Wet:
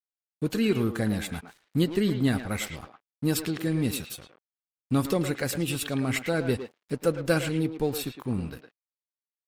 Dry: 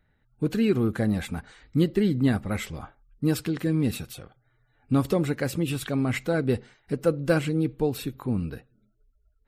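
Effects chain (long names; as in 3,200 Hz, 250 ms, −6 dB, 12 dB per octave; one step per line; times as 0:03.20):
high-shelf EQ 2,400 Hz +8.5 dB
dead-zone distortion −45 dBFS
far-end echo of a speakerphone 110 ms, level −7 dB
level −2 dB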